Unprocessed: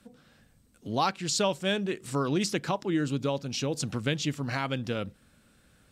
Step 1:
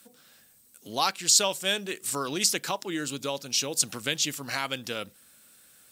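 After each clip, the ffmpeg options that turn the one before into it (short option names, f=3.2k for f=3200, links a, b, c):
-af "aemphasis=mode=production:type=riaa"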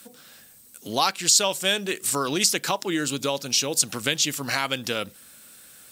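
-af "acompressor=threshold=-33dB:ratio=1.5,volume=8dB"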